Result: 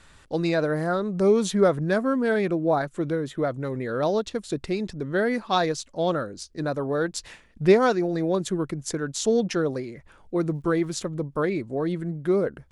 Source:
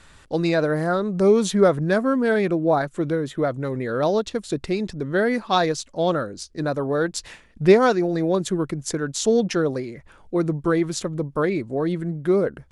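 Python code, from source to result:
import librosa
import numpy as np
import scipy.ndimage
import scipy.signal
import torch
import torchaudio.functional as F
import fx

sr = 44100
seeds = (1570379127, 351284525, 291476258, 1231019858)

y = fx.dmg_crackle(x, sr, seeds[0], per_s=fx.line((10.39, 110.0), (11.03, 550.0)), level_db=-50.0, at=(10.39, 11.03), fade=0.02)
y = y * 10.0 ** (-3.0 / 20.0)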